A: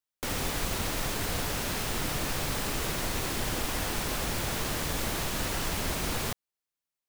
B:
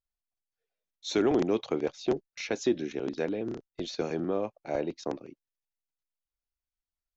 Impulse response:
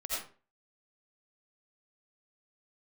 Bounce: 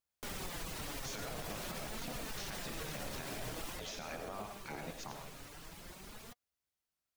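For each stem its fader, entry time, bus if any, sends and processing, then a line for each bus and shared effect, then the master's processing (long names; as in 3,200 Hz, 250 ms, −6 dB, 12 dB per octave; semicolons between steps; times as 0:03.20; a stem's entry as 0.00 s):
0:03.67 −4 dB → 0:03.90 −15 dB, 0.00 s, no send, reverb reduction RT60 0.53 s; flanger 0.47 Hz, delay 4 ms, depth 3.5 ms, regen +44%
+1.0 dB, 0.00 s, send −6.5 dB, gate on every frequency bin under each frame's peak −10 dB weak; downward compressor, threshold −43 dBFS, peak gain reduction 13.5 dB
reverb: on, RT60 0.40 s, pre-delay 45 ms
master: brickwall limiter −32.5 dBFS, peak gain reduction 8.5 dB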